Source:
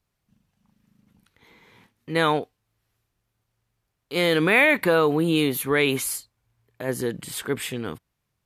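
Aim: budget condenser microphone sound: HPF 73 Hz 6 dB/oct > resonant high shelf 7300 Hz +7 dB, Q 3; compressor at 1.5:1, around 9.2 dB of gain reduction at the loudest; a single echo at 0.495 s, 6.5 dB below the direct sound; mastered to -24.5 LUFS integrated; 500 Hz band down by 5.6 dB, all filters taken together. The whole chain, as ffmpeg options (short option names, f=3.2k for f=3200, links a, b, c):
-af "equalizer=f=500:t=o:g=-6.5,acompressor=threshold=-40dB:ratio=1.5,highpass=f=73:p=1,highshelf=f=7.3k:t=q:w=3:g=7,aecho=1:1:495:0.473,volume=4.5dB"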